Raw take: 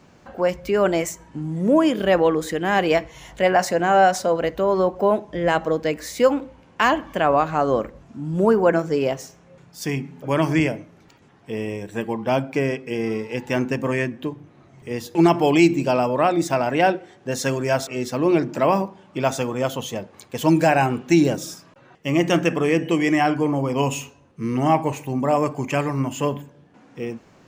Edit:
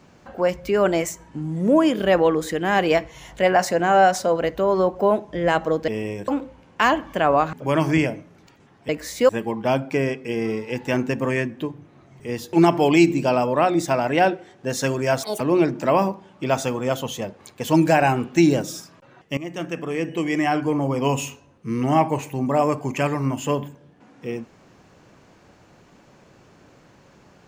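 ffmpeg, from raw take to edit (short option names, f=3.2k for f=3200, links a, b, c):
-filter_complex "[0:a]asplit=9[a][b][c][d][e][f][g][h][i];[a]atrim=end=5.882[j];[b]atrim=start=11.508:end=11.912[k];[c]atrim=start=6.278:end=7.532[l];[d]atrim=start=10.148:end=11.512[m];[e]atrim=start=5.878:end=6.282[n];[f]atrim=start=11.908:end=17.854[o];[g]atrim=start=17.85:end=18.14,asetpts=PTS-STARTPTS,asetrate=74088,aresample=44100,atrim=end_sample=7612,asetpts=PTS-STARTPTS[p];[h]atrim=start=18.136:end=22.11,asetpts=PTS-STARTPTS,afade=t=out:st=3.97:d=0.004:c=hsin:silence=0.158489[q];[i]atrim=start=22.11,asetpts=PTS-STARTPTS,afade=t=in:d=1.54:silence=0.158489[r];[j][k]acrossfade=d=0.004:c1=hsin:c2=hsin[s];[s][l]acrossfade=d=0.004:c1=hsin:c2=hsin[t];[t][m]acrossfade=d=0.004:c1=hsin:c2=hsin[u];[u][n]acrossfade=d=0.004:c1=hsin:c2=hsin[v];[v][o]acrossfade=d=0.004:c1=hsin:c2=hsin[w];[w][p]acrossfade=d=0.004:c1=hsin:c2=hsin[x];[q][r]concat=n=2:v=0:a=1[y];[x][y]acrossfade=d=0.004:c1=hsin:c2=hsin"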